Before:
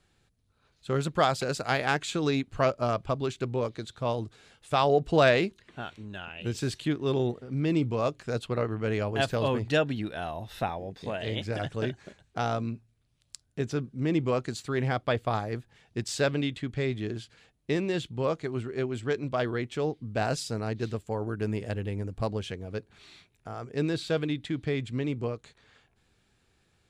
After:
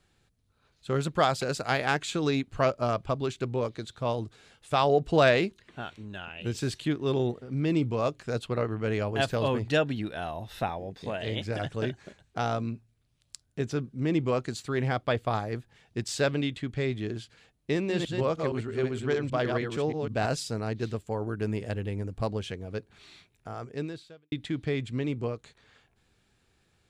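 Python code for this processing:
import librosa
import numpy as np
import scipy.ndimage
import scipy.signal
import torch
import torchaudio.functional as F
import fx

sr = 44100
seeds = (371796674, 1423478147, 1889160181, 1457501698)

y = fx.reverse_delay(x, sr, ms=156, wet_db=-4, at=(17.74, 20.26))
y = fx.edit(y, sr, fx.fade_out_span(start_s=23.63, length_s=0.69, curve='qua'), tone=tone)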